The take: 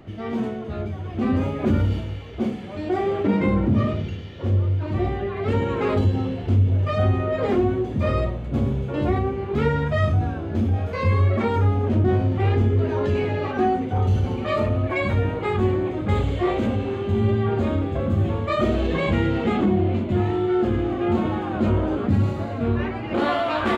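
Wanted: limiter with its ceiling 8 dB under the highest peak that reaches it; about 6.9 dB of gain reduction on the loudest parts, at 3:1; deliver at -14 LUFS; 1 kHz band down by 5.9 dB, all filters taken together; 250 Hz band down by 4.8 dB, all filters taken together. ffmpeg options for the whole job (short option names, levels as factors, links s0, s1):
-af "equalizer=f=250:t=o:g=-6,equalizer=f=1000:t=o:g=-8,acompressor=threshold=0.0562:ratio=3,volume=8.41,alimiter=limit=0.531:level=0:latency=1"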